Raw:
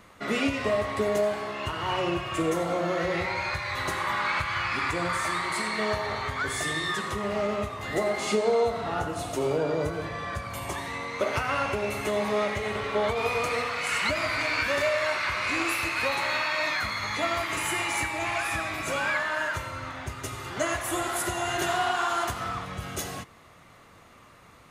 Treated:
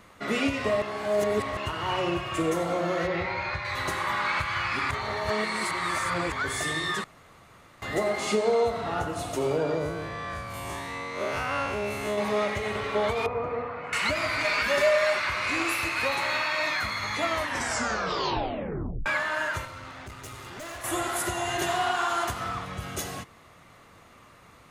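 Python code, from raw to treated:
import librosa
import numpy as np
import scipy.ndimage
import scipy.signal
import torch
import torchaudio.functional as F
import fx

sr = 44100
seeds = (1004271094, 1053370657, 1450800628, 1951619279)

y = fx.air_absorb(x, sr, metres=130.0, at=(3.07, 3.65))
y = fx.spec_blur(y, sr, span_ms=83.0, at=(9.78, 12.18))
y = fx.lowpass(y, sr, hz=1000.0, slope=12, at=(13.26, 13.93))
y = fx.comb(y, sr, ms=4.9, depth=0.77, at=(14.44, 15.2))
y = fx.tube_stage(y, sr, drive_db=37.0, bias=0.65, at=(19.65, 20.84))
y = fx.notch(y, sr, hz=1400.0, q=12.0, at=(21.4, 21.83))
y = fx.edit(y, sr, fx.reverse_span(start_s=0.82, length_s=0.75),
    fx.reverse_span(start_s=4.91, length_s=1.41),
    fx.room_tone_fill(start_s=7.04, length_s=0.78),
    fx.tape_stop(start_s=17.26, length_s=1.8), tone=tone)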